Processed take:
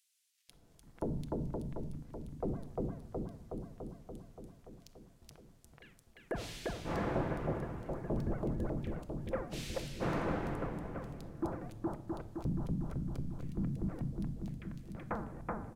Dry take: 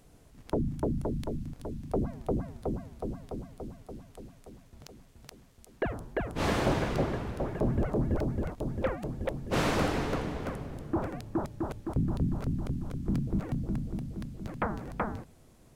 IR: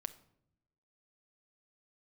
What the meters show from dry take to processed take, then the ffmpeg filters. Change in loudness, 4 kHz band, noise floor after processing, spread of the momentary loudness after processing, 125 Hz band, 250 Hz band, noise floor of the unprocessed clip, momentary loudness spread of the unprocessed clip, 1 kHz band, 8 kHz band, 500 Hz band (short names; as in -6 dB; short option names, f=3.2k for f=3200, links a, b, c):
-6.5 dB, -8.5 dB, -64 dBFS, 17 LU, -6.5 dB, -6.5 dB, -57 dBFS, 17 LU, -7.0 dB, -7.0 dB, -6.5 dB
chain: -filter_complex "[0:a]acrossover=split=2400[a][b];[a]adelay=490[c];[c][b]amix=inputs=2:normalize=0[d];[1:a]atrim=start_sample=2205[e];[d][e]afir=irnorm=-1:irlink=0,volume=-4.5dB"